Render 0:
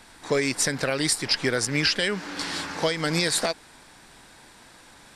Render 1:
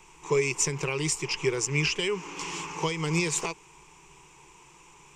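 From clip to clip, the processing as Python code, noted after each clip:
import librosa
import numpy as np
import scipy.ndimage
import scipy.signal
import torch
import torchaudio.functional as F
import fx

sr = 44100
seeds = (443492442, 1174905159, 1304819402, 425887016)

y = fx.ripple_eq(x, sr, per_octave=0.73, db=18)
y = y * librosa.db_to_amplitude(-6.5)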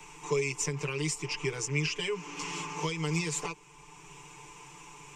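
y = x + 0.95 * np.pad(x, (int(6.8 * sr / 1000.0), 0))[:len(x)]
y = fx.band_squash(y, sr, depth_pct=40)
y = y * librosa.db_to_amplitude(-7.5)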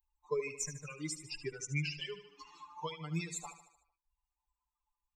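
y = fx.bin_expand(x, sr, power=3.0)
y = fx.echo_feedback(y, sr, ms=75, feedback_pct=54, wet_db=-12)
y = y * librosa.db_to_amplitude(-2.0)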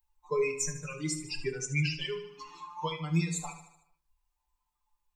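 y = fx.room_shoebox(x, sr, seeds[0], volume_m3=220.0, walls='furnished', distance_m=0.95)
y = y * librosa.db_to_amplitude(5.0)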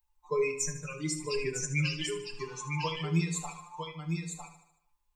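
y = x + 10.0 ** (-5.5 / 20.0) * np.pad(x, (int(954 * sr / 1000.0), 0))[:len(x)]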